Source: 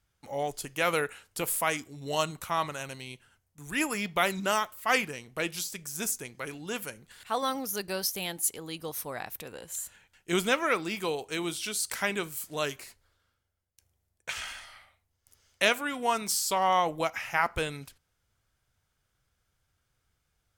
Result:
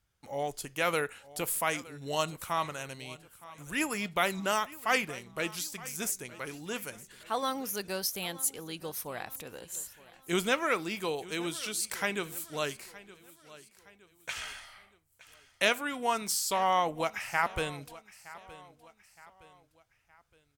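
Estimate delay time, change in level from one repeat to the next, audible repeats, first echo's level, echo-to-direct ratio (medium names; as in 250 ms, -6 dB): 917 ms, -7.5 dB, 3, -19.0 dB, -18.0 dB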